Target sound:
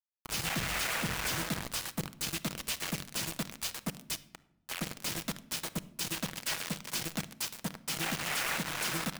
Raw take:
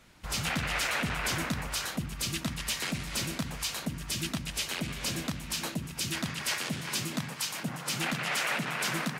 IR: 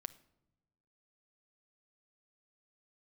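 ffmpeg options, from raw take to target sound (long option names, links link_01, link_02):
-filter_complex "[0:a]asplit=3[link_01][link_02][link_03];[link_01]afade=type=out:start_time=4.15:duration=0.02[link_04];[link_02]asplit=3[link_05][link_06][link_07];[link_05]bandpass=frequency=270:width_type=q:width=8,volume=0dB[link_08];[link_06]bandpass=frequency=2290:width_type=q:width=8,volume=-6dB[link_09];[link_07]bandpass=frequency=3010:width_type=q:width=8,volume=-9dB[link_10];[link_08][link_09][link_10]amix=inputs=3:normalize=0,afade=type=in:start_time=4.15:duration=0.02,afade=type=out:start_time=4.65:duration=0.02[link_11];[link_03]afade=type=in:start_time=4.65:duration=0.02[link_12];[link_04][link_11][link_12]amix=inputs=3:normalize=0,acrusher=bits=4:mix=0:aa=0.000001[link_13];[1:a]atrim=start_sample=2205[link_14];[link_13][link_14]afir=irnorm=-1:irlink=0"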